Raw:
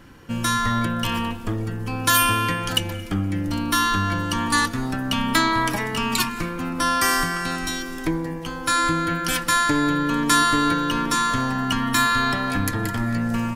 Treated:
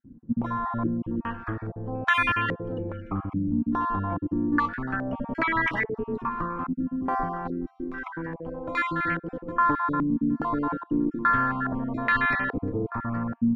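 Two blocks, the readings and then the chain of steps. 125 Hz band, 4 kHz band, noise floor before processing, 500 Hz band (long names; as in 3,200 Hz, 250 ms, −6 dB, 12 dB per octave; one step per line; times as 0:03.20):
−6.5 dB, −19.0 dB, −32 dBFS, −3.0 dB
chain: time-frequency cells dropped at random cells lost 24%
low-pass on a step sequencer 2.4 Hz 240–2,100 Hz
level −6 dB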